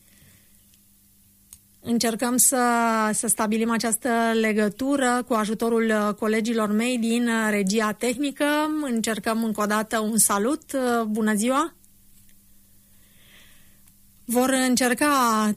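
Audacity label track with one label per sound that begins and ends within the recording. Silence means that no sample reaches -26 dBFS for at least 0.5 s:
1.530000	11.660000	sound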